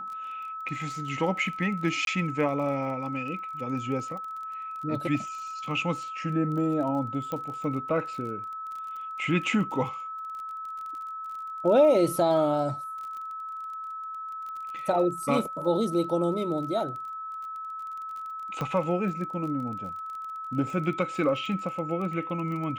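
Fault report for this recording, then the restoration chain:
crackle 27/s -36 dBFS
tone 1300 Hz -34 dBFS
2.05–2.07 gap 22 ms
7.32 pop -20 dBFS
18.61 pop -18 dBFS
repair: de-click; notch 1300 Hz, Q 30; interpolate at 2.05, 22 ms

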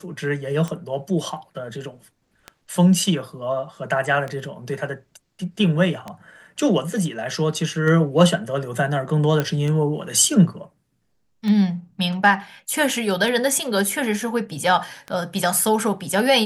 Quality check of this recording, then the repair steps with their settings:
tick 33 1/3 rpm -16 dBFS
9.4 pop -8 dBFS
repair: de-click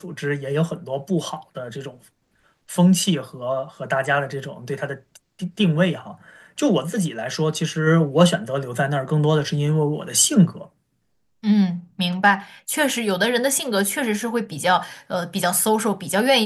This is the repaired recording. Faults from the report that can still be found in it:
none

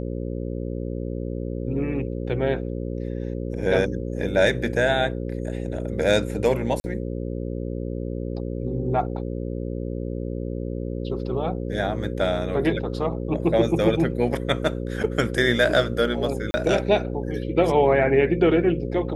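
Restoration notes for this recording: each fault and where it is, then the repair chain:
buzz 60 Hz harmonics 9 -29 dBFS
6.8–6.84 gap 40 ms
15.03–15.04 gap 7.5 ms
16.51–16.54 gap 30 ms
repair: de-hum 60 Hz, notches 9; interpolate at 6.8, 40 ms; interpolate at 15.03, 7.5 ms; interpolate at 16.51, 30 ms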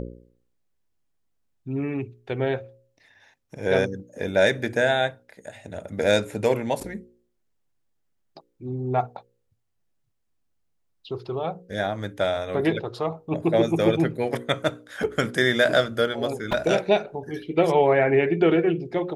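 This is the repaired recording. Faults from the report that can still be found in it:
none

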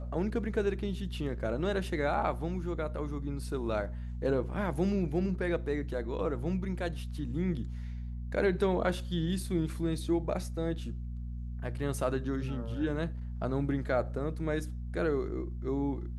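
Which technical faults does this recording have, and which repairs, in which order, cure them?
hum 60 Hz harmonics 4 -38 dBFS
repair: de-hum 60 Hz, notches 4

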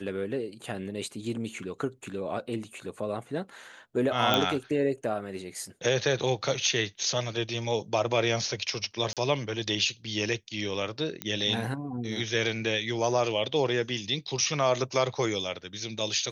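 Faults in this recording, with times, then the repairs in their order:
4.34 pop -10 dBFS
9.13–9.17 gap 37 ms
11.22 pop -14 dBFS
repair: de-click; interpolate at 9.13, 37 ms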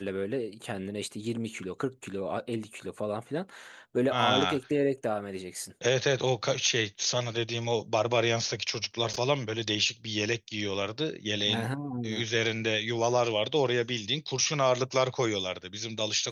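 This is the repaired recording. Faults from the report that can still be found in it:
none

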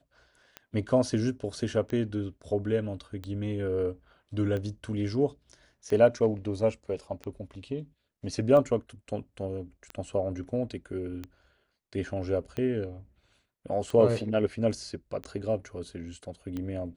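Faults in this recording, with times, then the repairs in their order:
tick 45 rpm -23 dBFS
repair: de-click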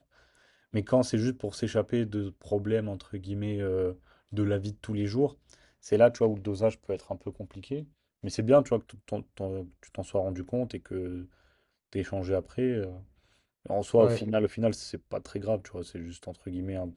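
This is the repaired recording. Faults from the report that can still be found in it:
none

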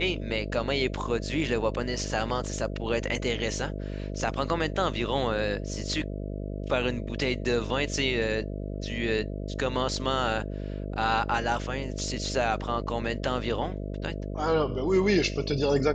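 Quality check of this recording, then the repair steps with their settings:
buzz 50 Hz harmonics 13 -34 dBFS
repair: de-hum 50 Hz, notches 13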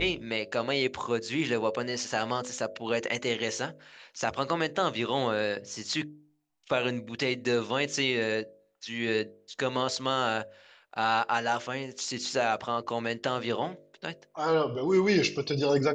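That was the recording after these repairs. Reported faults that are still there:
none

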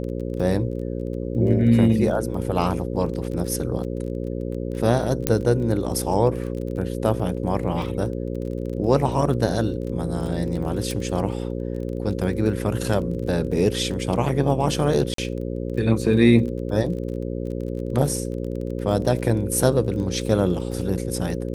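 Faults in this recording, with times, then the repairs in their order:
buzz 60 Hz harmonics 9 -28 dBFS
crackle 23/s -31 dBFS
5.27 pop -3 dBFS
10.91 pop
15.14–15.18 gap 43 ms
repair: de-click; de-hum 60 Hz, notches 9; interpolate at 15.14, 43 ms

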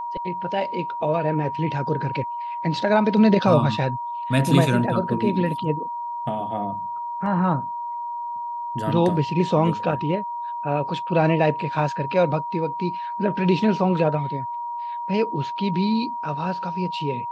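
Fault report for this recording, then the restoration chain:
tone 950 Hz -27 dBFS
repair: notch 950 Hz, Q 30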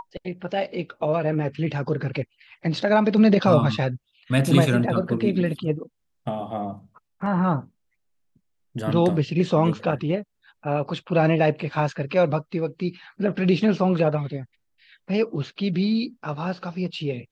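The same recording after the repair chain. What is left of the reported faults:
none

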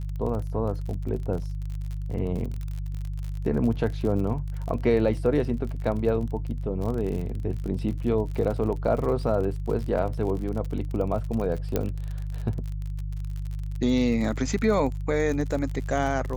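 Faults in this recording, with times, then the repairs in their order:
crackle 47/s -32 dBFS
hum 50 Hz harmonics 3 -31 dBFS
11.76 pop -11 dBFS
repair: de-click; de-hum 50 Hz, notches 3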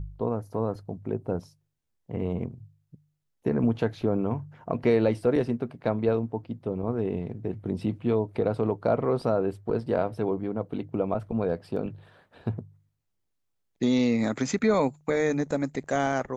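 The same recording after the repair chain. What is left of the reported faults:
11.76 pop

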